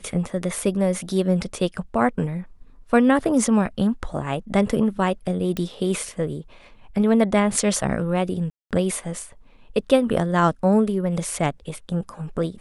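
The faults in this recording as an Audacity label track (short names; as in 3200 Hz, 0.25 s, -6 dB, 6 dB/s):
5.570000	5.570000	pop
8.500000	8.710000	gap 0.207 s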